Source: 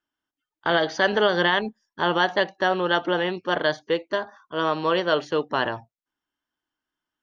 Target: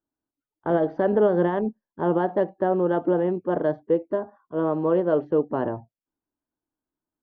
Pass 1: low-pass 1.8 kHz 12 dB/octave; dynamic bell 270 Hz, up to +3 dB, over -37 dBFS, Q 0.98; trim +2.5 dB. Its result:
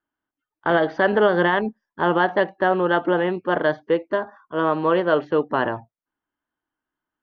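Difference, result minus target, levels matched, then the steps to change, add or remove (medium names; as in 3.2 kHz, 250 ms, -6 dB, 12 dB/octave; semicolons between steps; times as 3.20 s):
2 kHz band +12.0 dB
change: low-pass 610 Hz 12 dB/octave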